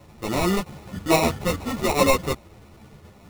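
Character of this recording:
aliases and images of a low sample rate 1,600 Hz, jitter 0%
a shimmering, thickened sound

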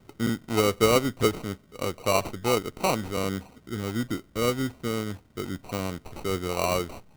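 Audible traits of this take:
aliases and images of a low sample rate 1,700 Hz, jitter 0%

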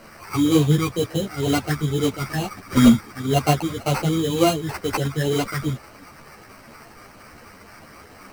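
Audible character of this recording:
a quantiser's noise floor 8 bits, dither triangular
phaser sweep stages 8, 2.1 Hz, lowest notch 560–3,100 Hz
aliases and images of a low sample rate 3,500 Hz, jitter 0%
a shimmering, thickened sound

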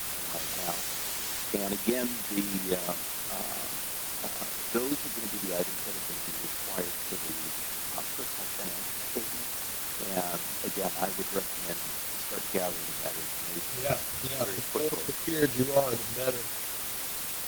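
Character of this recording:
chopped level 5.9 Hz, depth 65%, duty 20%
a quantiser's noise floor 6 bits, dither triangular
Opus

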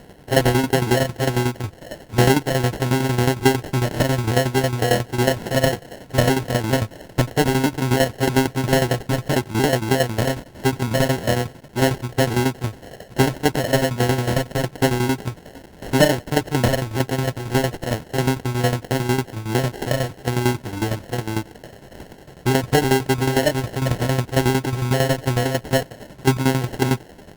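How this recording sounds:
a quantiser's noise floor 8 bits, dither triangular
tremolo saw down 11 Hz, depth 75%
aliases and images of a low sample rate 1,200 Hz, jitter 0%
Opus

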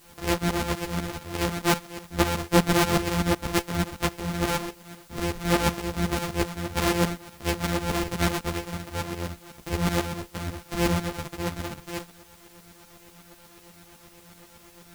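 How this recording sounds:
a buzz of ramps at a fixed pitch in blocks of 256 samples
tremolo saw up 8.1 Hz, depth 80%
a quantiser's noise floor 10 bits, dither triangular
a shimmering, thickened sound

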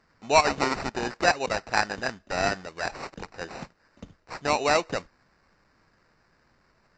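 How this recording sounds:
aliases and images of a low sample rate 3,300 Hz, jitter 0%
Ogg Vorbis

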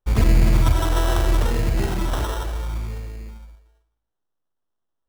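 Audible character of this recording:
phaser sweep stages 2, 0.73 Hz, lowest notch 190–1,100 Hz
aliases and images of a low sample rate 2,300 Hz, jitter 0%

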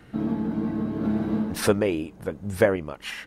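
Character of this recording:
sample-and-hold tremolo 2.9 Hz

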